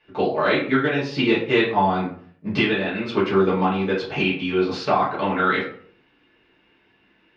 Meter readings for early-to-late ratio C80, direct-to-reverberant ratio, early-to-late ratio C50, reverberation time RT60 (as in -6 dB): 11.0 dB, -8.5 dB, 6.5 dB, 0.55 s